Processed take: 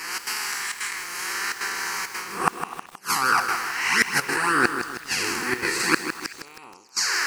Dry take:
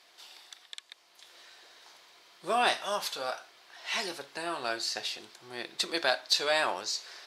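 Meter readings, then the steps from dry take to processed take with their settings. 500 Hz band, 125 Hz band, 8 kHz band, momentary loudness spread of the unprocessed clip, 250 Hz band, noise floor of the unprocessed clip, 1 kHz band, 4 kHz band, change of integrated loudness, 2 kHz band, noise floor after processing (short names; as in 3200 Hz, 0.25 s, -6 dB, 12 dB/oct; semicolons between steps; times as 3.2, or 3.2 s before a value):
+0.5 dB, +16.0 dB, +12.5 dB, 19 LU, +12.0 dB, -62 dBFS, +8.5 dB, +3.5 dB, +6.5 dB, +12.5 dB, -47 dBFS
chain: time blur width 0.181 s; envelope flanger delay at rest 6.5 ms, full sweep at -31 dBFS; flipped gate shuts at -29 dBFS, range -39 dB; step gate "xx.xxxxx.xxxxxx" 168 bpm -12 dB; reverse; compressor 4:1, threshold -55 dBFS, peak gain reduction 15 dB; reverse; harmonic-percussive split percussive +8 dB; fixed phaser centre 1500 Hz, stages 4; delay with a stepping band-pass 0.126 s, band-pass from 360 Hz, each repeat 1.4 oct, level -12 dB; maximiser +34 dB; lo-fi delay 0.158 s, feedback 55%, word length 6-bit, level -8.5 dB; gain -1 dB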